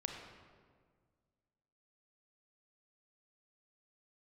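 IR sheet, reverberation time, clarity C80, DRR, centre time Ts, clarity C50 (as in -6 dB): 1.7 s, 5.0 dB, 2.5 dB, 52 ms, 3.5 dB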